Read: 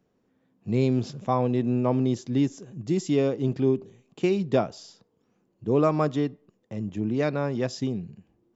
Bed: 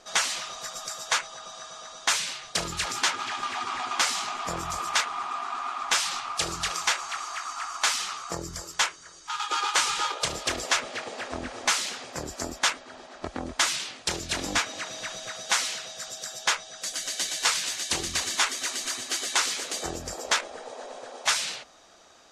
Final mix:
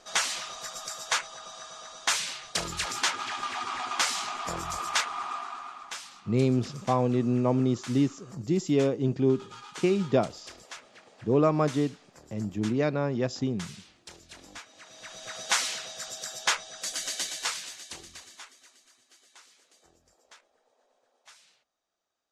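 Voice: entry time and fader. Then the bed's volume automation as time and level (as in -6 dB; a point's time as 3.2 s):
5.60 s, -1.0 dB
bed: 5.33 s -2 dB
6.15 s -19 dB
14.69 s -19 dB
15.38 s -1 dB
17.1 s -1 dB
18.89 s -30 dB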